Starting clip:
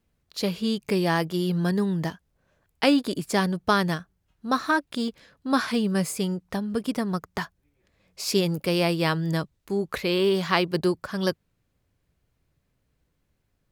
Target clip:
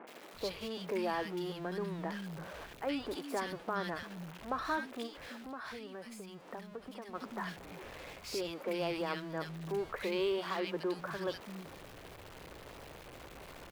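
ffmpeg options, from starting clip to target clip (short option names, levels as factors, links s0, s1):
-filter_complex "[0:a]aeval=exprs='val(0)+0.5*0.0316*sgn(val(0))':c=same,alimiter=limit=0.158:level=0:latency=1,acrossover=split=220|1800[s0][s1][s2];[s2]adelay=70[s3];[s0]adelay=340[s4];[s4][s1][s3]amix=inputs=3:normalize=0,asplit=3[s5][s6][s7];[s5]afade=t=out:st=5.06:d=0.02[s8];[s6]acompressor=threshold=0.0251:ratio=6,afade=t=in:st=5.06:d=0.02,afade=t=out:st=7.14:d=0.02[s9];[s7]afade=t=in:st=7.14:d=0.02[s10];[s8][s9][s10]amix=inputs=3:normalize=0,bass=f=250:g=-12,treble=f=4000:g=-12,volume=0.447"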